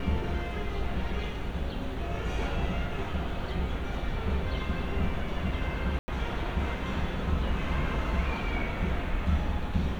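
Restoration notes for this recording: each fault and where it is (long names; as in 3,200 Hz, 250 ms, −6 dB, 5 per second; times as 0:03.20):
0:05.99–0:06.08: drop-out 90 ms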